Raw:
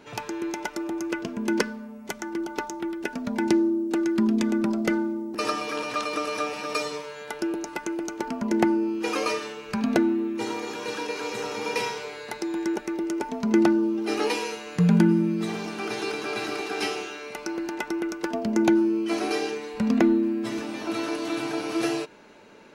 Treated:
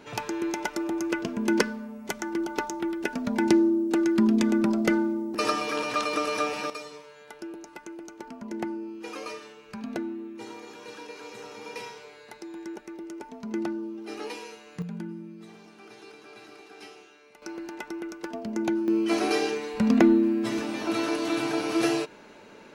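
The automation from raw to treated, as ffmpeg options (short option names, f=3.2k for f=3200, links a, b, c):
-af "asetnsamples=n=441:p=0,asendcmd='6.7 volume volume -11dB;14.82 volume volume -18dB;17.42 volume volume -7dB;18.88 volume volume 1.5dB',volume=1dB"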